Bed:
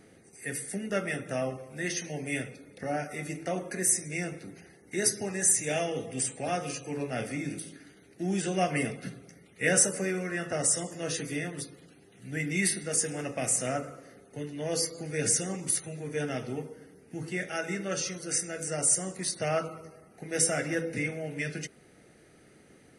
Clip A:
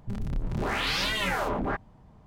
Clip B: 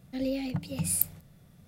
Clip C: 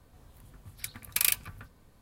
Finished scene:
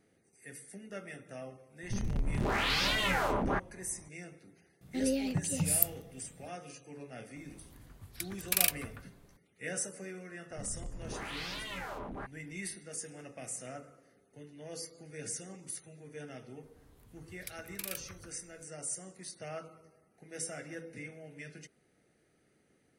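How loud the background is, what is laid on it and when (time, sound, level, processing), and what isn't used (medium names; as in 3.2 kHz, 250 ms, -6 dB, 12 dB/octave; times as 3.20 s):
bed -13.5 dB
1.83 s: add A -2 dB
4.81 s: add B -0.5 dB
7.36 s: add C -2 dB
10.50 s: add A -13 dB
16.63 s: add C -7 dB + peak limiter -15.5 dBFS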